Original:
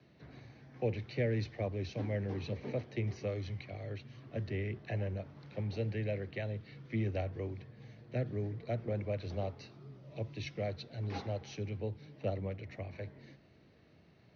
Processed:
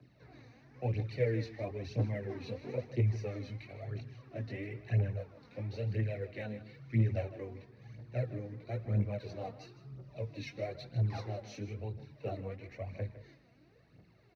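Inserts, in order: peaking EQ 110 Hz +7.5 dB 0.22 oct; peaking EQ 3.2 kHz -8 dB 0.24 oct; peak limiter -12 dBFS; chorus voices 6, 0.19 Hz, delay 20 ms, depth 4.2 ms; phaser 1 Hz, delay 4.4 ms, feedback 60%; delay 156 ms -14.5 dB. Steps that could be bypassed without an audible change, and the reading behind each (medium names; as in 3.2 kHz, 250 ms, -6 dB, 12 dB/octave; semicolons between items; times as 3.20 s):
peak limiter -12 dBFS: peak at its input -20.0 dBFS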